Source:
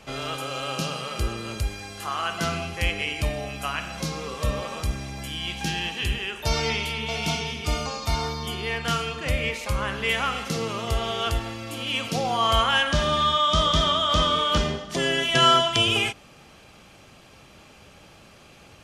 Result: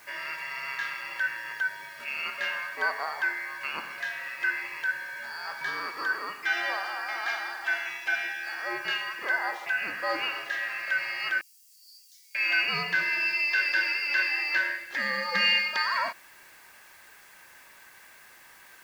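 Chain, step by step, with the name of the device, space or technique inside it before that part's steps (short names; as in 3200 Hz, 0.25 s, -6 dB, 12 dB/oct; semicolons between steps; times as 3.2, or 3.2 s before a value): split-band scrambled radio (four-band scrambler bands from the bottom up 2143; BPF 360–2900 Hz; white noise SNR 26 dB); 11.41–12.35 inverse Chebyshev high-pass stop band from 1400 Hz, stop band 70 dB; gain -3 dB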